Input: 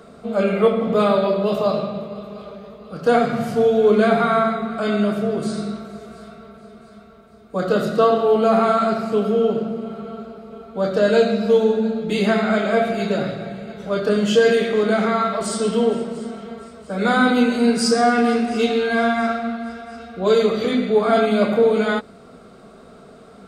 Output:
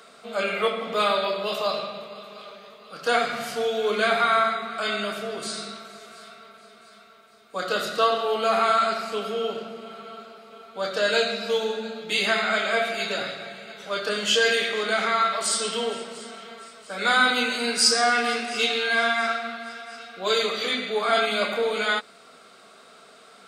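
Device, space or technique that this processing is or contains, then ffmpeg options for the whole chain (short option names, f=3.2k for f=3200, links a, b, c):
filter by subtraction: -filter_complex "[0:a]asplit=2[a][b];[b]lowpass=2.9k,volume=-1[c];[a][c]amix=inputs=2:normalize=0,volume=3.5dB"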